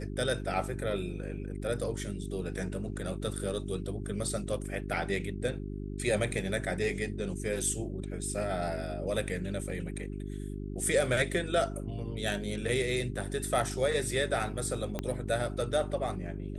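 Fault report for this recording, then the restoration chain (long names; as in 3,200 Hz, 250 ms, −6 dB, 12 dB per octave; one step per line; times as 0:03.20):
mains hum 50 Hz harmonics 8 −38 dBFS
0:14.99: click −18 dBFS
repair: click removal
hum removal 50 Hz, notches 8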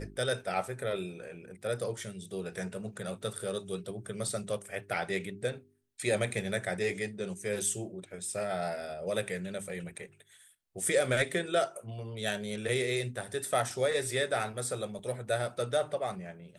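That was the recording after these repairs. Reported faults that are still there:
0:14.99: click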